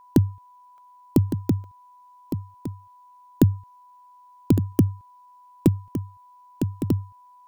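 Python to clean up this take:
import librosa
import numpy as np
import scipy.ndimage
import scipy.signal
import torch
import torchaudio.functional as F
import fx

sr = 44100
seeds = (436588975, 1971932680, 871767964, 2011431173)

y = fx.notch(x, sr, hz=990.0, q=30.0)
y = fx.fix_interpolate(y, sr, at_s=(0.78, 1.64), length_ms=1.1)
y = fx.fix_echo_inverse(y, sr, delay_ms=1161, level_db=-10.0)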